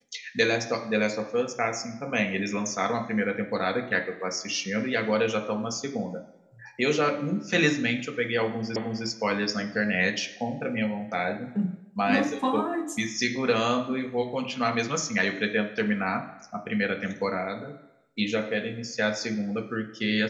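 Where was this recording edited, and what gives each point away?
0:08.76: the same again, the last 0.31 s

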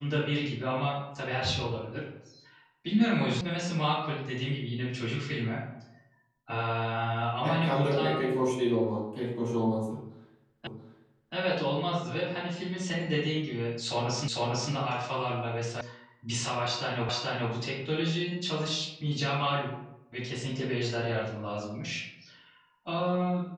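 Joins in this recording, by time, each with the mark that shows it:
0:03.41: cut off before it has died away
0:10.67: the same again, the last 0.68 s
0:14.28: the same again, the last 0.45 s
0:15.81: cut off before it has died away
0:17.09: the same again, the last 0.43 s

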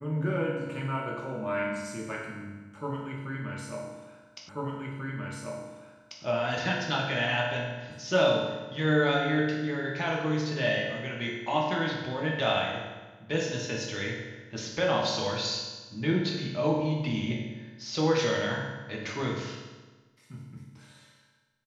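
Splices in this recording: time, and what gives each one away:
0:04.49: the same again, the last 1.74 s

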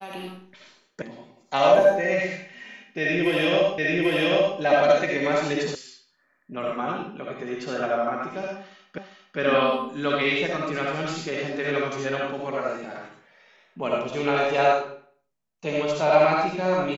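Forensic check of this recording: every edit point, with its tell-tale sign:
0:01.02: cut off before it has died away
0:03.78: the same again, the last 0.79 s
0:05.75: cut off before it has died away
0:08.98: the same again, the last 0.4 s

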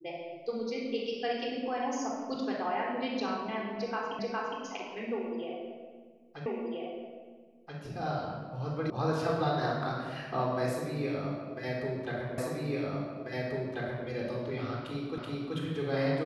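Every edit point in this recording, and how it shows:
0:04.19: the same again, the last 0.41 s
0:06.46: the same again, the last 1.33 s
0:08.90: cut off before it has died away
0:12.38: the same again, the last 1.69 s
0:15.18: the same again, the last 0.38 s

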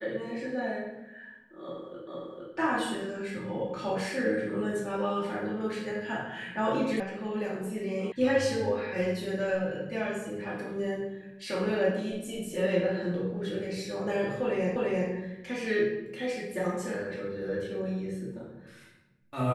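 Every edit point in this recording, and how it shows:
0:02.07: the same again, the last 0.46 s
0:07.00: cut off before it has died away
0:08.12: cut off before it has died away
0:14.76: the same again, the last 0.34 s

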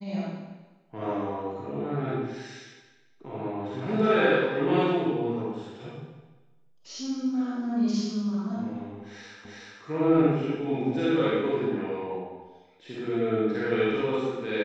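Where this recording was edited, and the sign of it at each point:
0:09.45: the same again, the last 0.37 s

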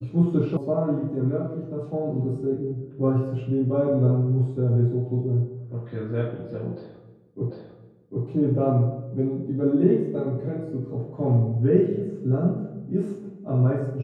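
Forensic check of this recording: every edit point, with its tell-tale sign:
0:00.57: cut off before it has died away
0:07.50: the same again, the last 0.75 s

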